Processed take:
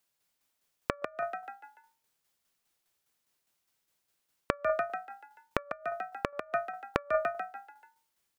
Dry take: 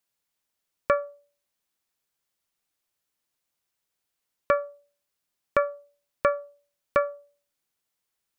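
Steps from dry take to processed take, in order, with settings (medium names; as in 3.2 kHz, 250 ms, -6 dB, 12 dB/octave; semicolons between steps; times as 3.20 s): frequency-shifting echo 145 ms, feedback 44%, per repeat +55 Hz, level -4 dB; tremolo saw down 4.9 Hz, depth 50%; inverted gate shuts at -16 dBFS, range -26 dB; trim +4 dB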